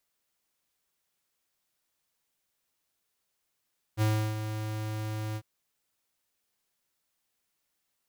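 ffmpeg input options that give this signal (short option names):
-f lavfi -i "aevalsrc='0.0596*(2*lt(mod(108*t,1),0.5)-1)':d=1.448:s=44100,afade=t=in:d=0.046,afade=t=out:st=0.046:d=0.328:silence=0.335,afade=t=out:st=1.39:d=0.058"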